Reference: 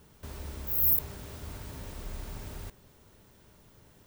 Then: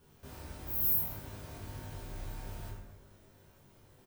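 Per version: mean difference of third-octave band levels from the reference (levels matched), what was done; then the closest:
2.5 dB: notch filter 7,200 Hz, Q 24
double-tracking delay 20 ms −3.5 dB
dense smooth reverb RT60 1.2 s, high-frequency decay 0.45×, DRR −3.5 dB
level −9 dB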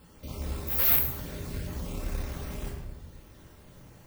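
3.5 dB: time-frequency cells dropped at random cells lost 28%
rectangular room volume 560 cubic metres, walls mixed, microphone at 2.1 metres
tube saturation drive 17 dB, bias 0.6
level +4 dB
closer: first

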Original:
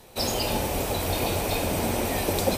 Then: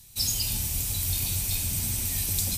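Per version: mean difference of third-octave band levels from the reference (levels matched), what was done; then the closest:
9.5 dB: drawn EQ curve 120 Hz 0 dB, 520 Hz −27 dB, 7,100 Hz +6 dB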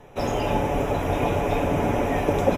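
6.5 dB: moving average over 10 samples
comb filter 7 ms, depth 40%
level +4 dB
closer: second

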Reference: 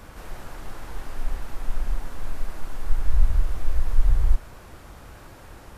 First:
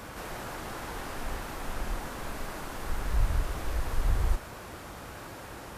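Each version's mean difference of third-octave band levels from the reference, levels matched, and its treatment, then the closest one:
1.5 dB: high-pass filter 140 Hz 6 dB per octave
level +4.5 dB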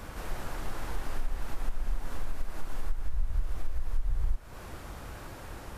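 4.0 dB: downward compressor 6 to 1, threshold −25 dBFS, peak gain reduction 16 dB
level +1.5 dB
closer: first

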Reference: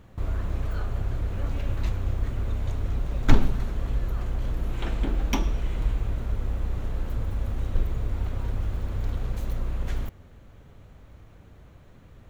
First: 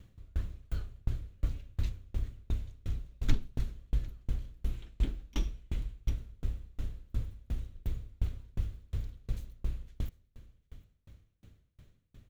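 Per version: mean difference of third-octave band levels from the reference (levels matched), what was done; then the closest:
9.5 dB: drawn EQ curve 110 Hz 0 dB, 420 Hz −6 dB, 850 Hz −13 dB, 3,500 Hz +1 dB
single-tap delay 751 ms −19 dB
tremolo with a ramp in dB decaying 2.8 Hz, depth 35 dB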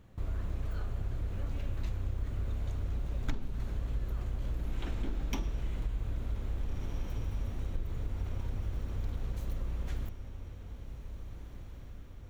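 3.0 dB: parametric band 1,000 Hz −3 dB 2.4 octaves
on a send: feedback delay with all-pass diffusion 1,764 ms, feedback 54%, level −11 dB
on the sum: downward compressor 10 to 1, threshold −22 dBFS, peak gain reduction 14.5 dB
level −6 dB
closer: second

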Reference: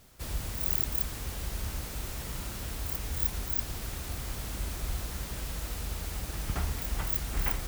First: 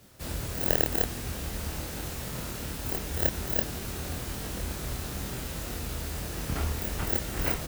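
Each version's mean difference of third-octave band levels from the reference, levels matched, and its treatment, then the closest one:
2.5 dB: high-pass filter 47 Hz
low-shelf EQ 80 Hz −8.5 dB
in parallel at −3.5 dB: decimation without filtering 38×
on the sum: double-tracking delay 25 ms −3 dB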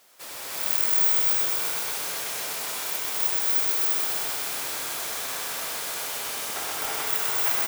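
7.0 dB: high-pass filter 570 Hz 12 dB per octave
single-tap delay 97 ms −6.5 dB
reverb whose tail is shaped and stops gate 360 ms rising, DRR −3.5 dB
feedback echo at a low word length 127 ms, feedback 80%, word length 8 bits, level −4 dB
level +3 dB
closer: first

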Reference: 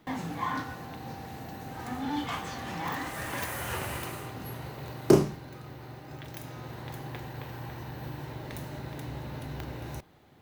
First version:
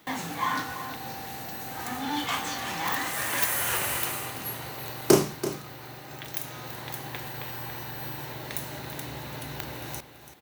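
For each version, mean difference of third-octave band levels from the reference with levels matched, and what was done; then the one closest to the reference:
5.0 dB: spectral tilt +2.5 dB per octave
notch filter 5,000 Hz, Q 30
single-tap delay 334 ms −12.5 dB
level +4 dB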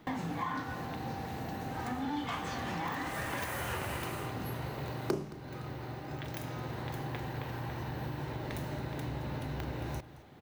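4.0 dB: parametric band 15,000 Hz −5 dB 1.8 octaves
downward compressor 4 to 1, threshold −37 dBFS, peak gain reduction 19.5 dB
single-tap delay 220 ms −17.5 dB
level +3.5 dB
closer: second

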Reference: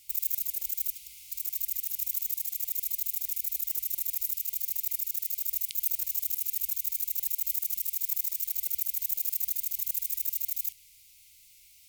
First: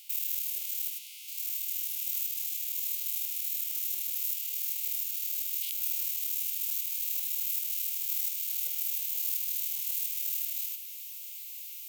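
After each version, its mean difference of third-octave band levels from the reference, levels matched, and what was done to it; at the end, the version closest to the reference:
2.5 dB: spectrum averaged block by block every 100 ms
Chebyshev high-pass with heavy ripple 770 Hz, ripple 9 dB
tilt shelving filter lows −3 dB, about 1,400 Hz
feedback delay with all-pass diffusion 1,339 ms, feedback 65%, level −12 dB
level +8 dB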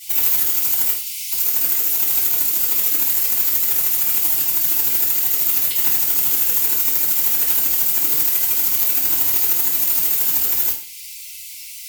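10.0 dB: low-shelf EQ 360 Hz −11.5 dB
in parallel at −0.5 dB: downward compressor, threshold −43 dBFS, peak gain reduction 19.5 dB
on the sum: soft clipping −23.5 dBFS, distortion −10 dB
feedback delay network reverb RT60 0.43 s, low-frequency decay 1.2×, high-frequency decay 1×, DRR −9.5 dB
level +6.5 dB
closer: first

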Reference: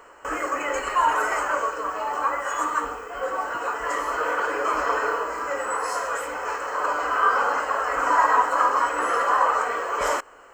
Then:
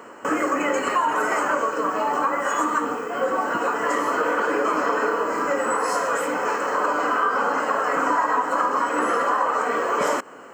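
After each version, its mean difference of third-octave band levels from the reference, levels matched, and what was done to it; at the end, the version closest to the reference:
3.5 dB: high-pass filter 99 Hz 24 dB per octave
parametric band 220 Hz +14.5 dB 1.3 octaves
downward compressor 5 to 1, threshold −23 dBFS, peak gain reduction 9.5 dB
level +4.5 dB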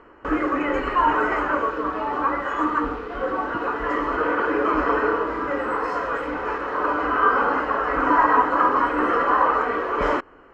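7.5 dB: low shelf with overshoot 420 Hz +8.5 dB, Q 1.5
in parallel at −5 dB: bit reduction 6 bits
on the sum: high-frequency loss of the air 310 metres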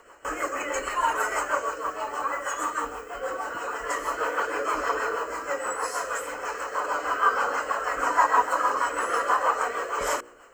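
2.5 dB: rotating-speaker cabinet horn 6.3 Hz
high-shelf EQ 8,000 Hz +8 dB
hum removal 60.26 Hz, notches 10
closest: third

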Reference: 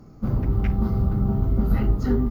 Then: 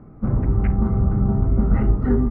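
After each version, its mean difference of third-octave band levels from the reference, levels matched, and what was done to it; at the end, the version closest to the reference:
3.0 dB: low-pass filter 2,100 Hz 24 dB per octave
level +3 dB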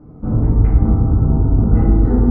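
5.5 dB: low-pass filter 1,000 Hz 12 dB per octave
feedback delay network reverb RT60 1.6 s, high-frequency decay 0.4×, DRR −6 dB
level +1.5 dB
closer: first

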